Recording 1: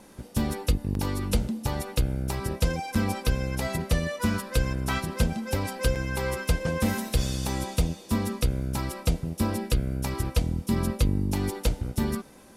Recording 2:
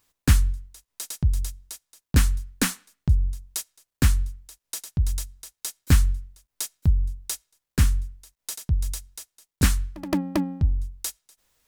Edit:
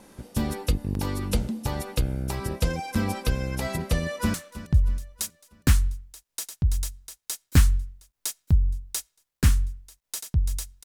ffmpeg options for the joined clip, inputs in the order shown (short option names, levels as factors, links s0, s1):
-filter_complex "[0:a]apad=whole_dur=10.84,atrim=end=10.84,atrim=end=4.342[s0];[1:a]atrim=start=2.688:end=9.19[s1];[s0][s1]acrossfade=d=0.004:c1=hsin:c2=hsin,asplit=2[s2][s3];[s3]afade=t=in:st=3.9:d=0.01,afade=t=out:st=4.34:d=0.01,aecho=0:1:320|640|960|1280|1600:0.177828|0.088914|0.044457|0.0222285|0.0111142[s4];[s2][s4]amix=inputs=2:normalize=0"